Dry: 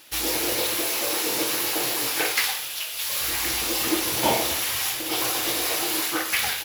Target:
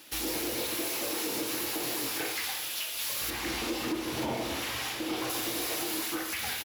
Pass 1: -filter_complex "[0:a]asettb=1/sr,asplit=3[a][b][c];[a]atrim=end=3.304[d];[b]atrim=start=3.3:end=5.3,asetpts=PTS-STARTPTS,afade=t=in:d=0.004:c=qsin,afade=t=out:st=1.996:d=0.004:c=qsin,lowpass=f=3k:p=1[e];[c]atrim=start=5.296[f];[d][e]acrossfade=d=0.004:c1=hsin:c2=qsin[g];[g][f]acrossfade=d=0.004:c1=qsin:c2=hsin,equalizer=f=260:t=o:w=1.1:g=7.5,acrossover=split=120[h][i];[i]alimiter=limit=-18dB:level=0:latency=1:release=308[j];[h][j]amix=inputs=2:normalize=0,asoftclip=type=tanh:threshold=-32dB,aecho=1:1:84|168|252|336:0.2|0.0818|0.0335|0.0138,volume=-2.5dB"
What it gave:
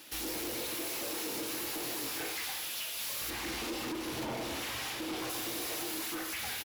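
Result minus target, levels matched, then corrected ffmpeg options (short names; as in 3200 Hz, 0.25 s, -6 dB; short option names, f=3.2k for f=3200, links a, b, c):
soft clip: distortion +10 dB
-filter_complex "[0:a]asettb=1/sr,asplit=3[a][b][c];[a]atrim=end=3.304[d];[b]atrim=start=3.3:end=5.3,asetpts=PTS-STARTPTS,afade=t=in:d=0.004:c=qsin,afade=t=out:st=1.996:d=0.004:c=qsin,lowpass=f=3k:p=1[e];[c]atrim=start=5.296[f];[d][e]acrossfade=d=0.004:c1=hsin:c2=qsin[g];[g][f]acrossfade=d=0.004:c1=qsin:c2=hsin,equalizer=f=260:t=o:w=1.1:g=7.5,acrossover=split=120[h][i];[i]alimiter=limit=-18dB:level=0:latency=1:release=308[j];[h][j]amix=inputs=2:normalize=0,asoftclip=type=tanh:threshold=-22.5dB,aecho=1:1:84|168|252|336:0.2|0.0818|0.0335|0.0138,volume=-2.5dB"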